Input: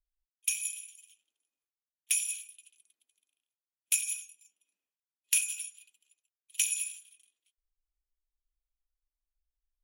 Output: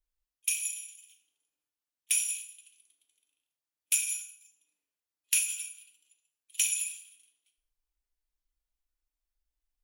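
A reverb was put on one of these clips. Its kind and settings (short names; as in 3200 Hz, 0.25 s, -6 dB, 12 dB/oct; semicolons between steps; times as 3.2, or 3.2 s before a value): FDN reverb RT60 0.58 s, low-frequency decay 1×, high-frequency decay 0.9×, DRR 3.5 dB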